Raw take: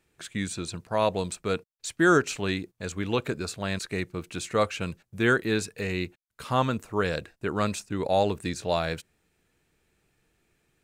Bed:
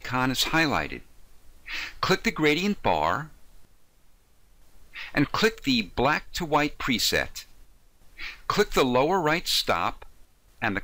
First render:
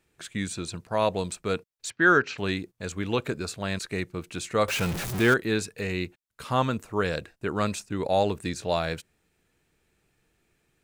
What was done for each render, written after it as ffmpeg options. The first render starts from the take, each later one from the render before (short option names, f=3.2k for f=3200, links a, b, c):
-filter_complex "[0:a]asettb=1/sr,asplit=3[a][b][c];[a]atrim=end=1.904[d];[b]atrim=start=1.9:end=2.38,asetpts=PTS-STARTPTS,afade=t=in:d=0.004:c=qsin,afade=t=out:st=0.476:d=0.004:c=qsin,highpass=110,equalizer=f=160:t=q:w=4:g=-4,equalizer=f=310:t=q:w=4:g=-5,equalizer=f=650:t=q:w=4:g=-4,equalizer=f=1.6k:t=q:w=4:g=6,equalizer=f=3.4k:t=q:w=4:g=-3,lowpass=f=4.8k:w=0.5412,lowpass=f=4.8k:w=1.3066[e];[c]atrim=start=2.376[f];[d][e]acrossfade=d=0.004:c1=hsin:c2=qsin[g];[g][f]acrossfade=d=0.004:c1=qsin:c2=hsin,asettb=1/sr,asplit=3[h][i][j];[h]atrim=end=4.684[k];[i]atrim=start=4.68:end=5.34,asetpts=PTS-STARTPTS,afade=t=in:d=0.004:c=qsin,afade=t=out:st=0.656:d=0.004:c=qsin,aeval=exprs='val(0)+0.5*0.0501*sgn(val(0))':c=same[l];[j]atrim=start=5.336[m];[k][l]acrossfade=d=0.004:c1=hsin:c2=qsin[n];[n][m]acrossfade=d=0.004:c1=qsin:c2=hsin"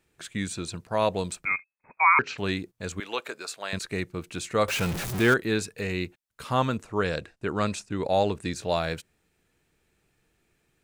-filter_complex "[0:a]asettb=1/sr,asplit=3[a][b][c];[a]atrim=end=1.454[d];[b]atrim=start=1.45:end=2.19,asetpts=PTS-STARTPTS,afade=t=in:d=0.004:c=qsin,afade=t=out:st=0.736:d=0.004:c=qsin,lowpass=f=2.2k:t=q:w=0.5098,lowpass=f=2.2k:t=q:w=0.6013,lowpass=f=2.2k:t=q:w=0.9,lowpass=f=2.2k:t=q:w=2.563,afreqshift=-2600[e];[c]atrim=start=2.186[f];[d][e]acrossfade=d=0.004:c1=hsin:c2=qsin[g];[g][f]acrossfade=d=0.004:c1=qsin:c2=hsin,asettb=1/sr,asplit=3[h][i][j];[h]atrim=end=3.004[k];[i]atrim=start=3:end=3.73,asetpts=PTS-STARTPTS,afade=t=in:d=0.004:c=qsin,afade=t=out:st=0.726:d=0.004:c=qsin,highpass=610[l];[j]atrim=start=3.726[m];[k][l]acrossfade=d=0.004:c1=hsin:c2=qsin[n];[n][m]acrossfade=d=0.004:c1=qsin:c2=hsin,asettb=1/sr,asplit=3[o][p][q];[o]atrim=end=6.774[r];[p]atrim=start=6.77:end=8.52,asetpts=PTS-STARTPTS,afade=t=in:d=0.004:c=qsin,afade=t=out:st=1.746:d=0.004:c=qsin,lowpass=9.3k[s];[q]atrim=start=8.516[t];[r][s]acrossfade=d=0.004:c1=hsin:c2=qsin[u];[u][t]acrossfade=d=0.004:c1=qsin:c2=hsin"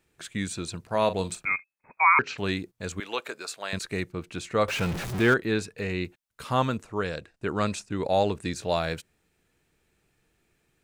-filter_complex "[0:a]asettb=1/sr,asplit=3[a][b][c];[a]atrim=end=0.804[d];[b]atrim=start=0.8:end=1.5,asetpts=PTS-STARTPTS,afade=t=in:d=0.004:c=qsin,afade=t=out:st=0.696:d=0.004:c=qsin,asplit=2[e][f];[f]adelay=42,volume=-11.5dB[g];[e][g]amix=inputs=2:normalize=0,atrim=end_sample=30870[h];[c]atrim=start=1.496[i];[d][h]acrossfade=d=0.004:c1=hsin:c2=qsin[j];[j][i]acrossfade=d=0.004:c1=qsin:c2=hsin,asettb=1/sr,asplit=3[k][l][m];[k]atrim=end=4.124[n];[l]atrim=start=4.12:end=6.05,asetpts=PTS-STARTPTS,afade=t=in:d=0.004:c=qsin,afade=t=out:st=1.926:d=0.004:c=qsin,highshelf=f=6.5k:g=-9.5[o];[m]atrim=start=6.046[p];[n][o]acrossfade=d=0.004:c1=hsin:c2=qsin[q];[q][p]acrossfade=d=0.004:c1=qsin:c2=hsin,asplit=2[r][s];[r]atrim=end=7.34,asetpts=PTS-STARTPTS,afade=t=out:st=6.63:d=0.71:silence=0.473151[t];[s]atrim=start=7.34,asetpts=PTS-STARTPTS,afade=t=in:d=0.004:c=hsin:silence=0.473151[u];[t][u]concat=n=2:v=0:a=1"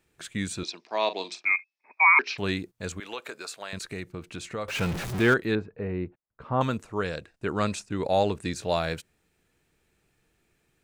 -filter_complex "[0:a]asettb=1/sr,asplit=3[a][b][c];[a]atrim=end=0.634[d];[b]atrim=start=0.63:end=2.38,asetpts=PTS-STARTPTS,afade=t=in:d=0.004:c=qsin,afade=t=out:st=1.746:d=0.004:c=qsin,highpass=f=310:w=0.5412,highpass=f=310:w=1.3066,equalizer=f=500:t=q:w=4:g=-9,equalizer=f=1.4k:t=q:w=4:g=-9,equalizer=f=2.3k:t=q:w=4:g=5,equalizer=f=3.7k:t=q:w=4:g=4,equalizer=f=5.3k:t=q:w=4:g=10,lowpass=f=5.7k:w=0.5412,lowpass=f=5.7k:w=1.3066[e];[c]atrim=start=2.376[f];[d][e]acrossfade=d=0.004:c1=hsin:c2=qsin[g];[g][f]acrossfade=d=0.004:c1=qsin:c2=hsin,asettb=1/sr,asplit=3[h][i][j];[h]atrim=end=2.924[k];[i]atrim=start=2.92:end=4.75,asetpts=PTS-STARTPTS,afade=t=in:d=0.004:c=qsin,afade=t=out:st=1.826:d=0.004:c=qsin,acompressor=threshold=-33dB:ratio=2.5:attack=3.2:release=140:knee=1:detection=peak[l];[j]atrim=start=4.746[m];[k][l]acrossfade=d=0.004:c1=hsin:c2=qsin[n];[n][m]acrossfade=d=0.004:c1=qsin:c2=hsin,asettb=1/sr,asplit=3[o][p][q];[o]atrim=end=5.554[r];[p]atrim=start=5.55:end=6.61,asetpts=PTS-STARTPTS,afade=t=in:d=0.004:c=qsin,afade=t=out:st=1.056:d=0.004:c=qsin,lowpass=1.1k[s];[q]atrim=start=6.606[t];[r][s]acrossfade=d=0.004:c1=hsin:c2=qsin[u];[u][t]acrossfade=d=0.004:c1=qsin:c2=hsin"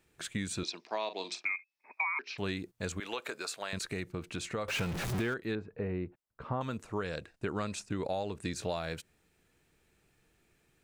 -af "acompressor=threshold=-31dB:ratio=10"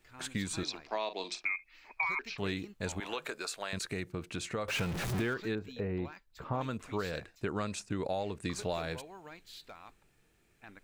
-filter_complex "[1:a]volume=-26.5dB[a];[0:a][a]amix=inputs=2:normalize=0"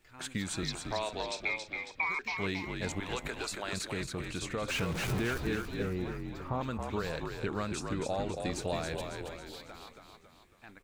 -filter_complex "[0:a]asplit=7[a][b][c][d][e][f][g];[b]adelay=275,afreqshift=-50,volume=-5dB[h];[c]adelay=550,afreqshift=-100,volume=-11dB[i];[d]adelay=825,afreqshift=-150,volume=-17dB[j];[e]adelay=1100,afreqshift=-200,volume=-23.1dB[k];[f]adelay=1375,afreqshift=-250,volume=-29.1dB[l];[g]adelay=1650,afreqshift=-300,volume=-35.1dB[m];[a][h][i][j][k][l][m]amix=inputs=7:normalize=0"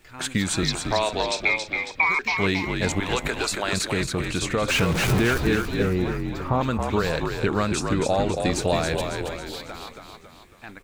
-af "volume=11.5dB"